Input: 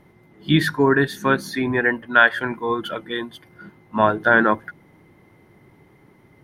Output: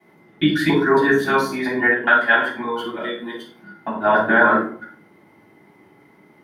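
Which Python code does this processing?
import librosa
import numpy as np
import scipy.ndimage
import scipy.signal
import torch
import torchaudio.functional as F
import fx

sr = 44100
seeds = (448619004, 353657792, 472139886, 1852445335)

p1 = fx.local_reverse(x, sr, ms=138.0)
p2 = scipy.signal.sosfilt(scipy.signal.bessel(2, 300.0, 'highpass', norm='mag', fs=sr, output='sos'), p1)
p3 = fx.level_steps(p2, sr, step_db=20)
p4 = p2 + F.gain(torch.from_numpy(p3), -1.0).numpy()
p5 = fx.room_shoebox(p4, sr, seeds[0], volume_m3=430.0, walls='furnished', distance_m=8.1)
y = F.gain(torch.from_numpy(p5), -12.5).numpy()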